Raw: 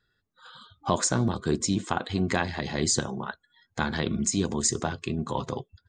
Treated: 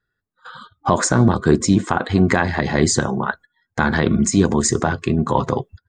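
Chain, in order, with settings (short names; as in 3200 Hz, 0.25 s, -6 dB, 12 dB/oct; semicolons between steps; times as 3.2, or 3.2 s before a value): gate -50 dBFS, range -15 dB; resonant high shelf 2300 Hz -6 dB, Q 1.5; maximiser +12.5 dB; gain -1 dB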